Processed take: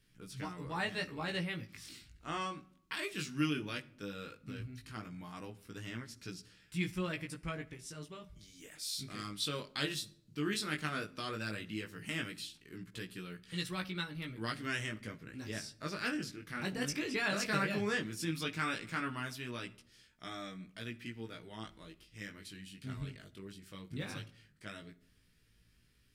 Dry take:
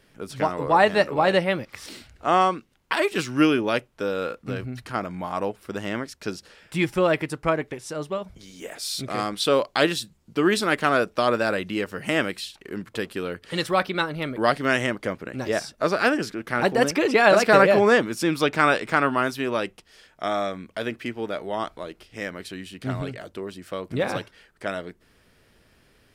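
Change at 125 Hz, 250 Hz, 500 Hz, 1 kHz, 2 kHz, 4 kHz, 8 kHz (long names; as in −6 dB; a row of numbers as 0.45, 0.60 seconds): −9.5, −14.0, −22.0, −19.5, −14.0, −10.5, −9.0 decibels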